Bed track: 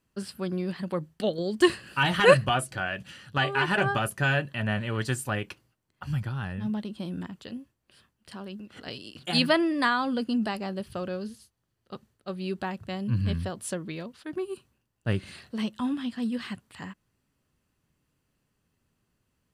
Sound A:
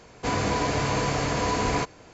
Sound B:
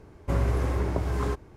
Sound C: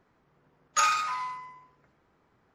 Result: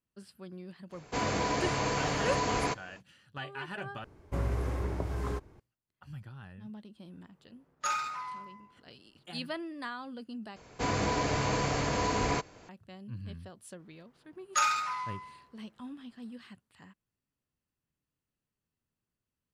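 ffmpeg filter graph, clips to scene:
-filter_complex "[1:a]asplit=2[a][b];[3:a]asplit=2[c][d];[0:a]volume=-15dB[e];[a]lowshelf=f=210:g=-4[f];[c]tiltshelf=f=970:g=3.5[g];[e]asplit=3[h][i][j];[h]atrim=end=4.044[k];[2:a]atrim=end=1.56,asetpts=PTS-STARTPTS,volume=-6.5dB[l];[i]atrim=start=5.596:end=10.564[m];[b]atrim=end=2.13,asetpts=PTS-STARTPTS,volume=-4.5dB[n];[j]atrim=start=12.686[o];[f]atrim=end=2.13,asetpts=PTS-STARTPTS,volume=-4.5dB,afade=t=in:d=0.05,afade=t=out:st=2.08:d=0.05,adelay=890[p];[g]atrim=end=2.54,asetpts=PTS-STARTPTS,volume=-6.5dB,afade=t=in:d=0.004:c=hsin,afade=t=out:st=2.536:d=0.004:c=hsin,adelay=7070[q];[d]atrim=end=2.54,asetpts=PTS-STARTPTS,volume=-3dB,afade=t=in:d=0.004:c=hsin,afade=t=out:st=2.536:d=0.004:c=hsin,adelay=13790[r];[k][l]acrossfade=d=0.004:c1=hsin:c2=hsin[s];[s][m]acrossfade=d=0.004:c1=hsin:c2=hsin[t];[t][n]acrossfade=d=0.004:c1=hsin:c2=hsin[u];[u][o]acrossfade=d=0.004:c1=hsin:c2=hsin[v];[v][p][q][r]amix=inputs=4:normalize=0"

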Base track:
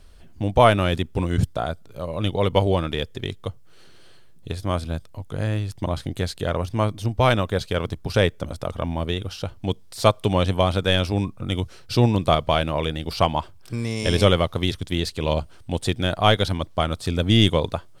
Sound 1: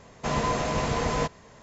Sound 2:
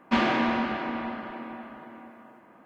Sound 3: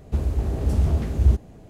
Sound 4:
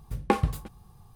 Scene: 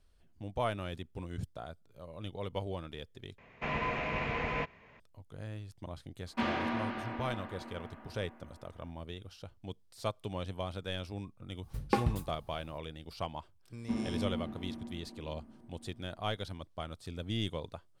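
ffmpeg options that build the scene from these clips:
-filter_complex "[2:a]asplit=2[a][b];[0:a]volume=-18.5dB[c];[1:a]lowpass=f=2.4k:t=q:w=4.1[d];[b]firequalizer=gain_entry='entry(150,0);entry(530,-15);entry(1400,-24)':delay=0.05:min_phase=1[e];[c]asplit=2[f][g];[f]atrim=end=3.384[h];[d]atrim=end=1.62,asetpts=PTS-STARTPTS,volume=-9.5dB[i];[g]atrim=start=4.996[j];[a]atrim=end=2.65,asetpts=PTS-STARTPTS,volume=-9.5dB,afade=t=in:d=0.004:c=hsin,afade=t=out:st=2.646:d=0.004:c=hsin,adelay=276066S[k];[4:a]atrim=end=1.15,asetpts=PTS-STARTPTS,volume=-5.5dB,afade=t=in:d=0.004:c=hsin,afade=t=out:st=1.146:d=0.004:c=hsin,adelay=11630[l];[e]atrim=end=2.65,asetpts=PTS-STARTPTS,volume=-5dB,afade=t=in:d=0.004:c=hsin,afade=t=out:st=2.646:d=0.004:c=hsin,adelay=13770[m];[h][i]acrossfade=d=0.004:c1=hsin:c2=hsin[n];[n][j]acrossfade=d=0.004:c1=hsin:c2=hsin[o];[o][k][l][m]amix=inputs=4:normalize=0"

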